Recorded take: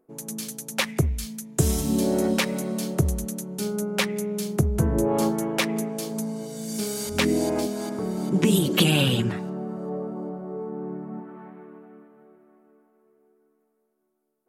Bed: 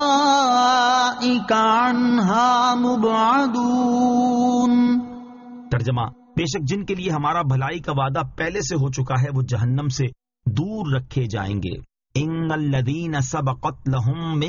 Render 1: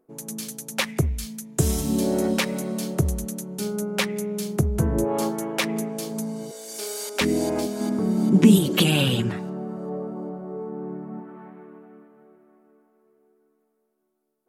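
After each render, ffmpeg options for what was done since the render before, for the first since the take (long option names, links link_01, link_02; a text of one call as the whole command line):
ffmpeg -i in.wav -filter_complex "[0:a]asettb=1/sr,asplit=3[link_01][link_02][link_03];[link_01]atrim=end=5.044[link_04];[link_02]atrim=start=5.04:end=5.64,asetpts=PTS-STARTPTS,afade=type=in:duration=0.004:curve=qsin,afade=type=out:start_time=0.596:duration=0.004:curve=qsin,lowshelf=frequency=200:gain=-8.5[link_05];[link_03]atrim=start=5.636[link_06];[link_04][link_05]acrossfade=duration=0.004:curve1=hsin:curve2=qsin[link_07];[link_07][link_06]acrossfade=duration=0.004:curve1=qsin:curve2=hsin,asettb=1/sr,asplit=3[link_08][link_09][link_10];[link_08]atrim=end=6.514[link_11];[link_09]atrim=start=6.51:end=7.21,asetpts=PTS-STARTPTS,afade=type=in:duration=0.004:curve=qsin,afade=type=out:start_time=0.696:duration=0.004:curve=qsin,highpass=frequency=390:width=0.5412,highpass=frequency=390:width=1.3066[link_12];[link_10]atrim=start=7.206[link_13];[link_11][link_12]acrossfade=duration=0.004:curve1=hsin:curve2=qsin[link_14];[link_14][link_13]acrossfade=duration=0.004:curve1=qsin:curve2=hsin,asettb=1/sr,asplit=3[link_15][link_16][link_17];[link_15]atrim=end=7.804[link_18];[link_16]atrim=start=7.8:end=8.58,asetpts=PTS-STARTPTS,afade=type=in:duration=0.004:curve=qsin,afade=type=out:start_time=0.776:duration=0.004:curve=qsin,equalizer=frequency=230:width_type=o:width=0.65:gain=10[link_19];[link_17]atrim=start=8.576[link_20];[link_18][link_19]acrossfade=duration=0.004:curve1=hsin:curve2=qsin[link_21];[link_21][link_20]acrossfade=duration=0.004:curve1=qsin:curve2=hsin" out.wav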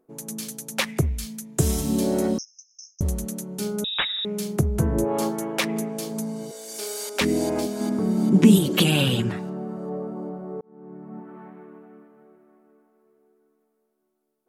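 ffmpeg -i in.wav -filter_complex "[0:a]asettb=1/sr,asplit=3[link_01][link_02][link_03];[link_01]atrim=end=2.384[link_04];[link_02]atrim=start=2.38:end=3.01,asetpts=PTS-STARTPTS,afade=type=in:duration=0.004:curve=qsin,afade=type=out:start_time=0.626:duration=0.004:curve=qsin,asuperpass=centerf=5800:order=20:qfactor=4.1[link_05];[link_03]atrim=start=3.006[link_06];[link_04][link_05]acrossfade=duration=0.004:curve1=hsin:curve2=qsin[link_07];[link_07][link_06]acrossfade=duration=0.004:curve1=qsin:curve2=hsin,asettb=1/sr,asplit=3[link_08][link_09][link_10];[link_08]atrim=end=3.844[link_11];[link_09]atrim=start=3.84:end=4.25,asetpts=PTS-STARTPTS,afade=type=in:duration=0.004:curve=qsin,afade=type=out:start_time=0.406:duration=0.004:curve=qsin,lowpass=frequency=3400:width_type=q:width=0.5098,lowpass=frequency=3400:width_type=q:width=0.6013,lowpass=frequency=3400:width_type=q:width=0.9,lowpass=frequency=3400:width_type=q:width=2.563,afreqshift=-4000[link_12];[link_10]atrim=start=4.246[link_13];[link_11][link_12]acrossfade=duration=0.004:curve1=hsin:curve2=qsin[link_14];[link_14][link_13]acrossfade=duration=0.004:curve1=qsin:curve2=hsin,asplit=2[link_15][link_16];[link_15]atrim=end=10.61,asetpts=PTS-STARTPTS,afade=type=out:start_time=10.606:duration=0.004:curve=hsin[link_17];[link_16]atrim=start=10.61,asetpts=PTS-STARTPTS,afade=type=in:duration=0.75[link_18];[link_17][link_18]concat=n=2:v=0:a=1" out.wav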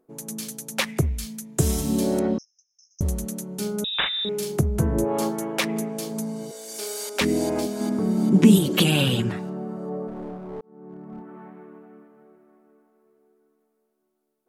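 ffmpeg -i in.wav -filter_complex "[0:a]asettb=1/sr,asplit=3[link_01][link_02][link_03];[link_01]atrim=end=2.194[link_04];[link_02]atrim=start=2.19:end=2.91,asetpts=PTS-STARTPTS,afade=type=in:duration=0.004:curve=qsin,afade=type=out:start_time=0.716:duration=0.004:curve=qsin,lowpass=2800[link_05];[link_03]atrim=start=2.906[link_06];[link_04][link_05]acrossfade=duration=0.004:curve1=hsin:curve2=qsin[link_07];[link_07][link_06]acrossfade=duration=0.004:curve1=qsin:curve2=hsin,asettb=1/sr,asplit=3[link_08][link_09][link_10];[link_08]atrim=end=3.904[link_11];[link_09]atrim=start=3.9:end=4.59,asetpts=PTS-STARTPTS,afade=type=in:duration=0.004:curve=qsin,afade=type=out:start_time=0.686:duration=0.004:curve=qsin,asplit=2[link_12][link_13];[link_13]adelay=41,volume=-4dB[link_14];[link_12][link_14]amix=inputs=2:normalize=0,atrim=end_sample=30429[link_15];[link_10]atrim=start=4.586[link_16];[link_11][link_15]acrossfade=duration=0.004:curve1=hsin:curve2=qsin[link_17];[link_17][link_16]acrossfade=duration=0.004:curve1=qsin:curve2=hsin,asplit=3[link_18][link_19][link_20];[link_18]afade=type=out:start_time=10.07:duration=0.02[link_21];[link_19]aeval=exprs='clip(val(0),-1,0.0188)':channel_layout=same,afade=type=in:start_time=10.07:duration=0.02,afade=type=out:start_time=11.28:duration=0.02[link_22];[link_20]afade=type=in:start_time=11.28:duration=0.02[link_23];[link_21][link_22][link_23]amix=inputs=3:normalize=0" out.wav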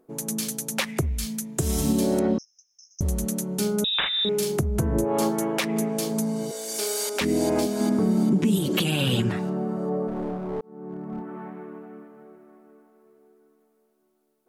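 ffmpeg -i in.wav -filter_complex "[0:a]asplit=2[link_01][link_02];[link_02]acompressor=threshold=-30dB:ratio=6,volume=-1.5dB[link_03];[link_01][link_03]amix=inputs=2:normalize=0,alimiter=limit=-13dB:level=0:latency=1:release=227" out.wav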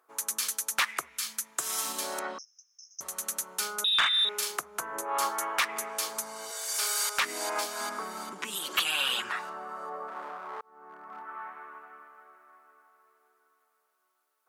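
ffmpeg -i in.wav -af "highpass=frequency=1200:width_type=q:width=2.5,asoftclip=type=tanh:threshold=-16.5dB" out.wav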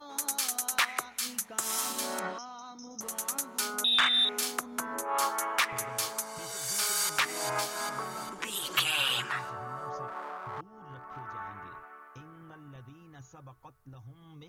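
ffmpeg -i in.wav -i bed.wav -filter_complex "[1:a]volume=-28.5dB[link_01];[0:a][link_01]amix=inputs=2:normalize=0" out.wav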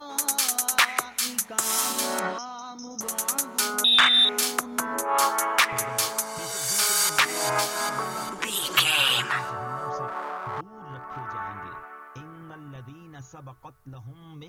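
ffmpeg -i in.wav -af "volume=7dB" out.wav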